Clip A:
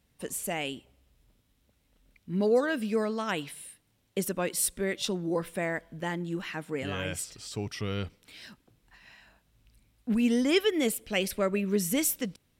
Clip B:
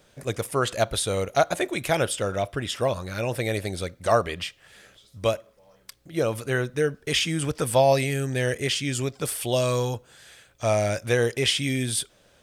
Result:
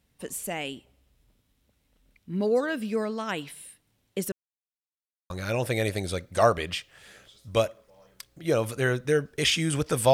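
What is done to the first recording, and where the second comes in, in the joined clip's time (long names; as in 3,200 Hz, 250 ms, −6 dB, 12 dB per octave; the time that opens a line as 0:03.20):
clip A
0:04.32–0:05.30: silence
0:05.30: continue with clip B from 0:02.99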